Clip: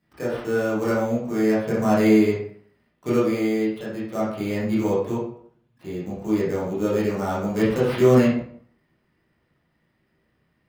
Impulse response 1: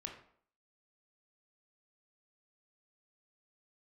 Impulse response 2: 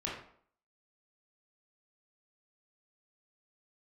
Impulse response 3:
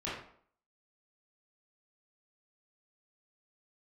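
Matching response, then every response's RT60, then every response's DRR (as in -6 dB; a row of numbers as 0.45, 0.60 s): 3; 0.60, 0.60, 0.60 s; 2.0, -5.0, -9.5 dB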